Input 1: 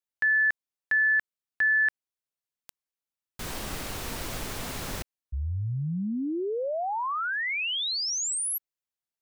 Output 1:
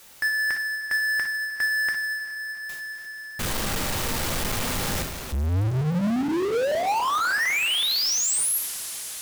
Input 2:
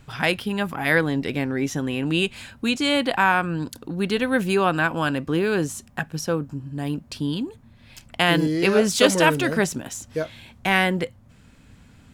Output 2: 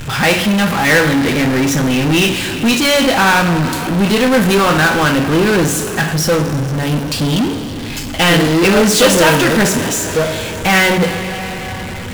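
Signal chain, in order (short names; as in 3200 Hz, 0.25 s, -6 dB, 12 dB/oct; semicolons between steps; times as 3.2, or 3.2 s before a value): two-slope reverb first 0.45 s, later 3.6 s, from -18 dB, DRR 3.5 dB; power-law curve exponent 0.35; upward expander 1.5:1, over -28 dBFS; gain -1 dB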